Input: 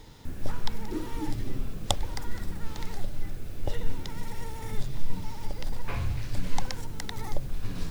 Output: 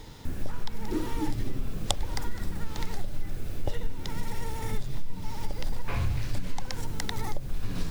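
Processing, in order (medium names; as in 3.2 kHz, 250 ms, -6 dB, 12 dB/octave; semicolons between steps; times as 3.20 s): compression 6:1, threshold -25 dBFS, peak gain reduction 10.5 dB; trim +4 dB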